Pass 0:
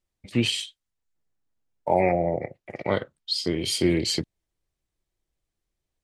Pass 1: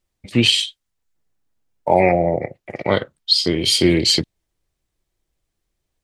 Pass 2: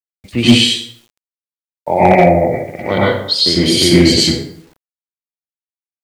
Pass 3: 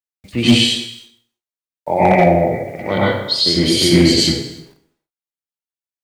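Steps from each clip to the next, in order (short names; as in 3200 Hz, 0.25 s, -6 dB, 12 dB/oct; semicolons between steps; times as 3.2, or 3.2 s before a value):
dynamic EQ 3700 Hz, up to +6 dB, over -39 dBFS, Q 1.2; gain +6.5 dB
plate-style reverb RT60 0.67 s, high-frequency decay 0.65×, pre-delay 85 ms, DRR -6.5 dB; requantised 8-bit, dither none; gain -1 dB
non-linear reverb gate 0.35 s falling, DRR 9.5 dB; gain -3 dB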